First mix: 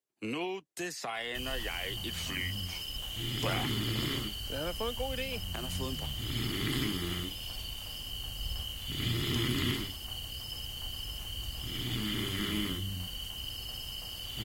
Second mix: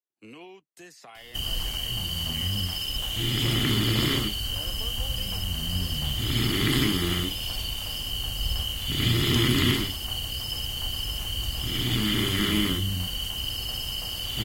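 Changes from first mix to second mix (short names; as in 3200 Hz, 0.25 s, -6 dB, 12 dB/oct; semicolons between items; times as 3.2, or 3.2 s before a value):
speech -10.0 dB; background +9.0 dB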